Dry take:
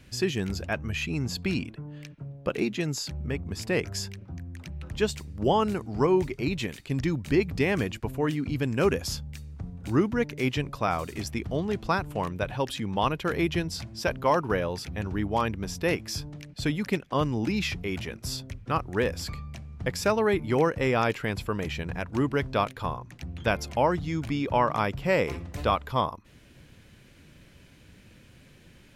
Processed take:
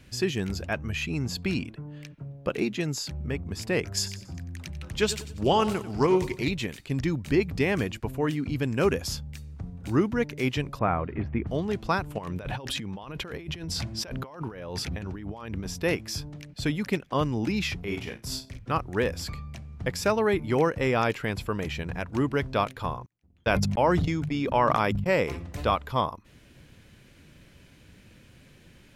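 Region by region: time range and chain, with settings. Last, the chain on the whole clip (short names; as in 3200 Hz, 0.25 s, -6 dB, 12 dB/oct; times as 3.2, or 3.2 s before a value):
3.97–6.51 high shelf 2500 Hz +8 dB + feedback echo 93 ms, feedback 40%, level -14 dB + Doppler distortion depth 0.13 ms
10.79–11.47 LPF 2200 Hz 24 dB/oct + low shelf 390 Hz +5 dB
12.18–15.67 high shelf 10000 Hz -5 dB + negative-ratio compressor -36 dBFS
17.79–18.59 flutter echo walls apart 8.6 m, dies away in 0.32 s + transient shaper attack -5 dB, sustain -11 dB + doubler 35 ms -6.5 dB
23.06–25.1 gate -32 dBFS, range -40 dB + notches 50/100/150/200/250 Hz + sustainer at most 25 dB/s
whole clip: dry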